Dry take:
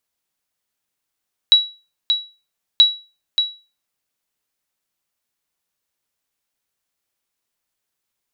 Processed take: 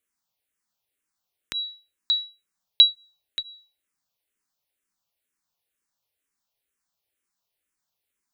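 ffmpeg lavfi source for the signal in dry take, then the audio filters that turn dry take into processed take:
-f lavfi -i "aevalsrc='0.708*(sin(2*PI*3900*mod(t,1.28))*exp(-6.91*mod(t,1.28)/0.32)+0.447*sin(2*PI*3900*max(mod(t,1.28)-0.58,0))*exp(-6.91*max(mod(t,1.28)-0.58,0)/0.32))':duration=2.56:sample_rate=44100"
-filter_complex "[0:a]asplit=2[link_01][link_02];[link_02]afreqshift=-2.1[link_03];[link_01][link_03]amix=inputs=2:normalize=1"

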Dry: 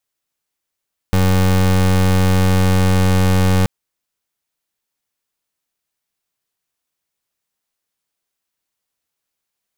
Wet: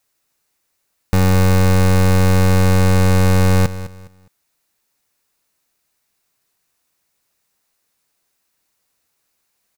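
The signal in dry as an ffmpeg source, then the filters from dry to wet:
-f lavfi -i "aevalsrc='0.224*(2*lt(mod(93.1*t,1),0.28)-1)':duration=2.53:sample_rate=44100"
-filter_complex "[0:a]equalizer=frequency=3200:width_type=o:width=0.2:gain=-6,asplit=2[link_01][link_02];[link_02]aeval=exprs='0.266*sin(PI/2*5.01*val(0)/0.266)':channel_layout=same,volume=-11.5dB[link_03];[link_01][link_03]amix=inputs=2:normalize=0,aecho=1:1:206|412|618:0.188|0.0509|0.0137"

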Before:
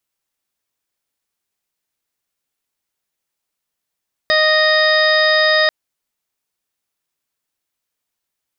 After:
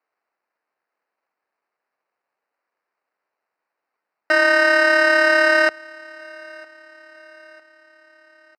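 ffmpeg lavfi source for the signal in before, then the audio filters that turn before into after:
-f lavfi -i "aevalsrc='0.168*sin(2*PI*620*t)+0.0794*sin(2*PI*1240*t)+0.188*sin(2*PI*1860*t)+0.0224*sin(2*PI*2480*t)+0.02*sin(2*PI*3100*t)+0.106*sin(2*PI*3720*t)+0.0224*sin(2*PI*4340*t)+0.0944*sin(2*PI*4960*t)':duration=1.39:sample_rate=44100"
-af "acrusher=samples=13:mix=1:aa=0.000001,highpass=490,lowpass=3300,aecho=1:1:953|1906|2859:0.0631|0.0303|0.0145"

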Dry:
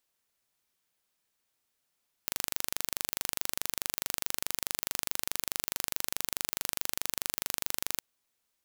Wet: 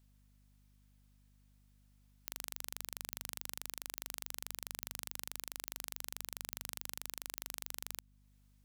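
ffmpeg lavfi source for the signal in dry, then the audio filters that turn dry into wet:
-f lavfi -i "aevalsrc='0.708*eq(mod(n,1785),0)':duration=5.72:sample_rate=44100"
-af "alimiter=limit=-13.5dB:level=0:latency=1:release=368,aeval=exprs='val(0)+0.000501*(sin(2*PI*50*n/s)+sin(2*PI*2*50*n/s)/2+sin(2*PI*3*50*n/s)/3+sin(2*PI*4*50*n/s)/4+sin(2*PI*5*50*n/s)/5)':channel_layout=same"

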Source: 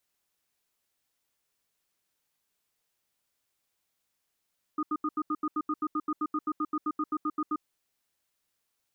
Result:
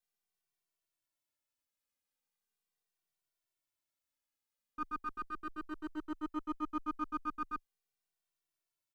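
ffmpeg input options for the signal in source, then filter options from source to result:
-f lavfi -i "aevalsrc='0.0355*(sin(2*PI*305*t)+sin(2*PI*1230*t))*clip(min(mod(t,0.13),0.05-mod(t,0.13))/0.005,0,1)':duration=2.78:sample_rate=44100"
-filter_complex "[0:a]aeval=exprs='if(lt(val(0),0),0.447*val(0),val(0))':channel_layout=same,agate=range=-6dB:threshold=-33dB:ratio=16:detection=peak,asplit=2[link_01][link_02];[link_02]adelay=2.1,afreqshift=-0.39[link_03];[link_01][link_03]amix=inputs=2:normalize=1"

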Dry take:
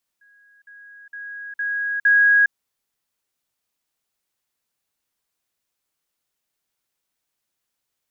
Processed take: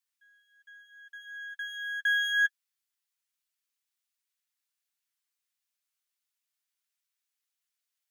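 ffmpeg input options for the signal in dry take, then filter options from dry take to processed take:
-f lavfi -i "aevalsrc='pow(10,(-51.5+10*floor(t/0.46))/20)*sin(2*PI*1650*t)*clip(min(mod(t,0.46),0.41-mod(t,0.46))/0.005,0,1)':duration=2.3:sample_rate=44100"
-af "aeval=exprs='if(lt(val(0),0),0.447*val(0),val(0))':channel_layout=same,highpass=1500,flanger=delay=6.7:depth=2.2:regen=-21:speed=0.25:shape=sinusoidal"

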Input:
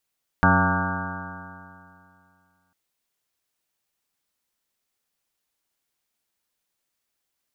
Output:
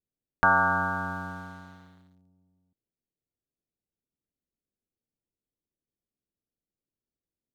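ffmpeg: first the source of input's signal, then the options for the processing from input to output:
-f lavfi -i "aevalsrc='0.0891*pow(10,-3*t/2.45)*sin(2*PI*90.34*t)+0.112*pow(10,-3*t/2.45)*sin(2*PI*181.52*t)+0.0631*pow(10,-3*t/2.45)*sin(2*PI*274.35*t)+0.0178*pow(10,-3*t/2.45)*sin(2*PI*369.64*t)+0.0168*pow(10,-3*t/2.45)*sin(2*PI*468.15*t)+0.0237*pow(10,-3*t/2.45)*sin(2*PI*570.6*t)+0.0447*pow(10,-3*t/2.45)*sin(2*PI*677.66*t)+0.0501*pow(10,-3*t/2.45)*sin(2*PI*789.95*t)+0.0891*pow(10,-3*t/2.45)*sin(2*PI*908.02*t)+0.0141*pow(10,-3*t/2.45)*sin(2*PI*1032.39*t)+0.0841*pow(10,-3*t/2.45)*sin(2*PI*1163.5*t)+0.0335*pow(10,-3*t/2.45)*sin(2*PI*1301.76*t)+0.0891*pow(10,-3*t/2.45)*sin(2*PI*1447.53*t)+0.075*pow(10,-3*t/2.45)*sin(2*PI*1601.12*t)':duration=2.3:sample_rate=44100"
-filter_complex "[0:a]acrossover=split=490[link_01][link_02];[link_01]acompressor=threshold=-33dB:ratio=6[link_03];[link_02]aeval=exprs='sgn(val(0))*max(abs(val(0))-0.00211,0)':channel_layout=same[link_04];[link_03][link_04]amix=inputs=2:normalize=0"

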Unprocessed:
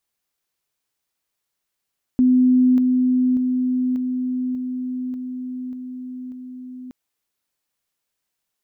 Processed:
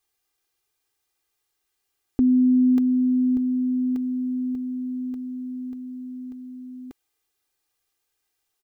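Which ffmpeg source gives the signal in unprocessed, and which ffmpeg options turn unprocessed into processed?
-f lavfi -i "aevalsrc='pow(10,(-11.5-3*floor(t/0.59))/20)*sin(2*PI*253*t)':duration=4.72:sample_rate=44100"
-af "aecho=1:1:2.5:0.85"

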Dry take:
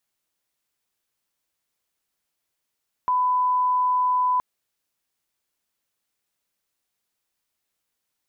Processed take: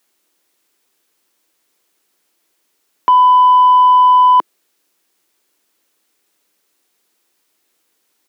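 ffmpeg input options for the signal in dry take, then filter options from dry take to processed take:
-f lavfi -i "sine=frequency=1000:duration=1.32:sample_rate=44100,volume=0.06dB"
-filter_complex "[0:a]firequalizer=gain_entry='entry(100,0);entry(330,14);entry(610,7)':delay=0.05:min_phase=1,acrossover=split=170[link_01][link_02];[link_02]acontrast=87[link_03];[link_01][link_03]amix=inputs=2:normalize=0"

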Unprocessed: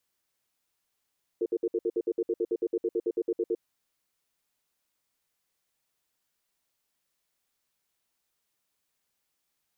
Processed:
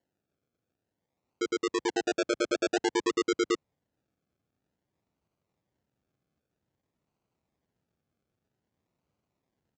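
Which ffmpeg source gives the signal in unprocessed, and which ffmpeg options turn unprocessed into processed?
-f lavfi -i "aevalsrc='0.0447*(sin(2*PI*353*t)+sin(2*PI*453*t))*clip(min(mod(t,0.11),0.05-mod(t,0.11))/0.005,0,1)':duration=2.2:sample_rate=44100"
-af "asubboost=boost=8:cutoff=240,aresample=16000,acrusher=samples=13:mix=1:aa=0.000001:lfo=1:lforange=7.8:lforate=0.52,aresample=44100,highpass=84"

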